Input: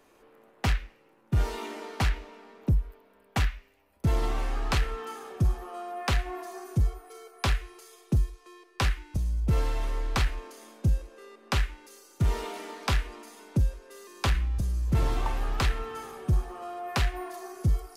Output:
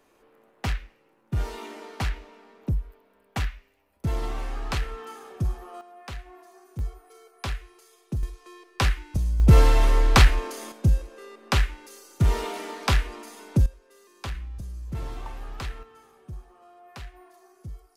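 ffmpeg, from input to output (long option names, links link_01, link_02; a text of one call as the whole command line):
ffmpeg -i in.wav -af "asetnsamples=nb_out_samples=441:pad=0,asendcmd='5.81 volume volume -11.5dB;6.79 volume volume -5dB;8.23 volume volume 3.5dB;9.4 volume volume 11dB;10.72 volume volume 4.5dB;13.66 volume volume -8dB;15.83 volume volume -14.5dB',volume=-2dB" out.wav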